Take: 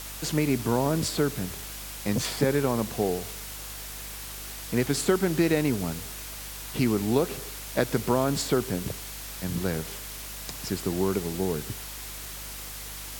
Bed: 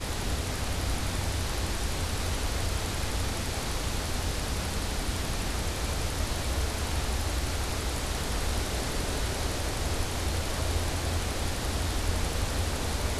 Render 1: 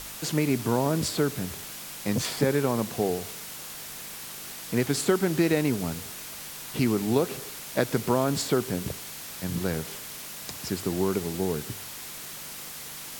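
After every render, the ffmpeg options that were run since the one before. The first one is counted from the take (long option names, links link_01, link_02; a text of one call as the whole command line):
ffmpeg -i in.wav -af "bandreject=frequency=50:width_type=h:width=4,bandreject=frequency=100:width_type=h:width=4" out.wav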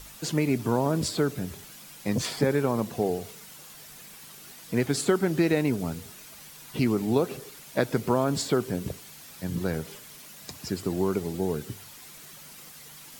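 ffmpeg -i in.wav -af "afftdn=noise_reduction=9:noise_floor=-40" out.wav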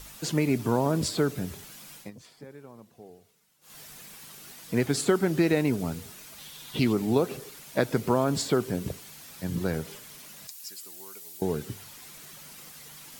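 ffmpeg -i in.wav -filter_complex "[0:a]asettb=1/sr,asplit=3[link_01][link_02][link_03];[link_01]atrim=end=6.384[link_04];[link_02]atrim=start=6.38:end=6.93,asetpts=PTS-STARTPTS,afade=type=in:duration=0.004:curve=qsin,afade=type=out:start_time=0.546:duration=0.004:curve=qsin,equalizer=frequency=3500:width_type=o:width=0.5:gain=10[link_05];[link_03]atrim=start=6.926[link_06];[link_04][link_05]acrossfade=duration=0.004:curve1=hsin:curve2=qsin[link_07];[link_07][link_06]acrossfade=duration=0.004:curve1=qsin:curve2=hsin,asettb=1/sr,asplit=3[link_08][link_09][link_10];[link_08]atrim=end=10.474[link_11];[link_09]atrim=start=10.47:end=11.42,asetpts=PTS-STARTPTS,afade=type=in:duration=0.004:curve=qsin,afade=type=out:start_time=0.946:duration=0.004:curve=qsin,aderivative[link_12];[link_10]atrim=start=11.416[link_13];[link_11][link_12]acrossfade=duration=0.004:curve1=hsin:curve2=qsin[link_14];[link_14][link_13]acrossfade=duration=0.004:curve1=qsin:curve2=hsin,asplit=3[link_15][link_16][link_17];[link_15]atrim=end=2.11,asetpts=PTS-STARTPTS,afade=type=out:start_time=1.96:duration=0.15:silence=0.0794328[link_18];[link_16]atrim=start=2.11:end=3.61,asetpts=PTS-STARTPTS,volume=-22dB[link_19];[link_17]atrim=start=3.61,asetpts=PTS-STARTPTS,afade=type=in:duration=0.15:silence=0.0794328[link_20];[link_18][link_19][link_20]concat=n=3:v=0:a=1" out.wav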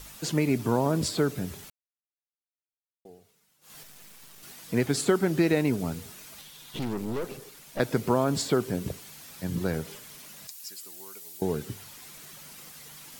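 ffmpeg -i in.wav -filter_complex "[0:a]asettb=1/sr,asplit=3[link_01][link_02][link_03];[link_01]atrim=end=3.834[link_04];[link_02]atrim=start=3.83:end=4.43,asetpts=PTS-STARTPTS,afade=type=in:duration=0.004:curve=qsin,afade=type=out:start_time=0.596:duration=0.004:curve=qsin,aeval=exprs='max(val(0),0)':channel_layout=same[link_05];[link_03]atrim=start=4.426[link_06];[link_04][link_05]acrossfade=duration=0.004:curve1=hsin:curve2=qsin[link_07];[link_07][link_06]acrossfade=duration=0.004:curve1=qsin:curve2=hsin,asettb=1/sr,asplit=3[link_08][link_09][link_10];[link_08]atrim=end=6.414[link_11];[link_09]atrim=start=6.41:end=7.8,asetpts=PTS-STARTPTS,afade=type=in:duration=0.004:curve=qsin,afade=type=out:start_time=1.386:duration=0.004:curve=qsin,aeval=exprs='(tanh(25.1*val(0)+0.65)-tanh(0.65))/25.1':channel_layout=same[link_12];[link_10]atrim=start=7.796[link_13];[link_11][link_12]acrossfade=duration=0.004:curve1=hsin:curve2=qsin[link_14];[link_14][link_13]acrossfade=duration=0.004:curve1=qsin:curve2=hsin,asplit=3[link_15][link_16][link_17];[link_15]atrim=end=1.7,asetpts=PTS-STARTPTS,afade=type=out:start_time=1.696:duration=0.004:curve=hsin[link_18];[link_16]atrim=start=1.7:end=3.05,asetpts=PTS-STARTPTS,volume=0[link_19];[link_17]atrim=start=3.05,asetpts=PTS-STARTPTS,afade=type=in:duration=0.004:curve=hsin[link_20];[link_18][link_19][link_20]concat=n=3:v=0:a=1" out.wav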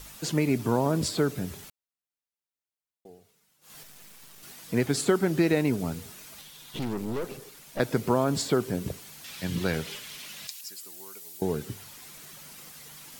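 ffmpeg -i in.wav -filter_complex "[0:a]asettb=1/sr,asplit=3[link_01][link_02][link_03];[link_01]atrim=end=9.244[link_04];[link_02]atrim=start=9.24:end=10.61,asetpts=PTS-STARTPTS,afade=type=in:duration=0.004:curve=qsin,afade=type=out:start_time=1.366:duration=0.004:curve=qsin,equalizer=frequency=3000:width_type=o:width=1.8:gain=10.5[link_05];[link_03]atrim=start=10.606[link_06];[link_04][link_05]acrossfade=duration=0.004:curve1=hsin:curve2=qsin[link_07];[link_07][link_06]acrossfade=duration=0.004:curve1=qsin:curve2=hsin" out.wav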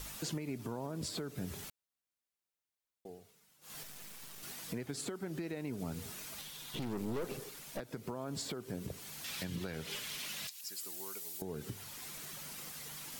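ffmpeg -i in.wav -af "acompressor=threshold=-32dB:ratio=6,alimiter=level_in=5.5dB:limit=-24dB:level=0:latency=1:release=333,volume=-5.5dB" out.wav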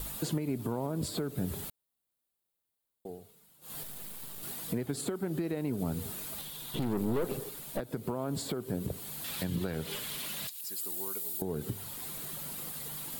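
ffmpeg -i in.wav -filter_complex "[0:a]asplit=2[link_01][link_02];[link_02]adynamicsmooth=sensitivity=3.5:basefreq=1300,volume=2.5dB[link_03];[link_01][link_03]amix=inputs=2:normalize=0,aexciter=amount=1.8:drive=1.1:freq=3200" out.wav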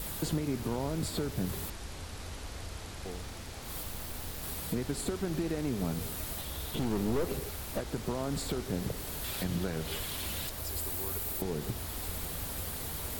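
ffmpeg -i in.wav -i bed.wav -filter_complex "[1:a]volume=-12dB[link_01];[0:a][link_01]amix=inputs=2:normalize=0" out.wav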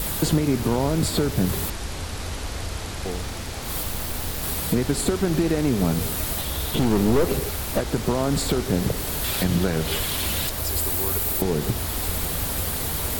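ffmpeg -i in.wav -af "volume=11.5dB" out.wav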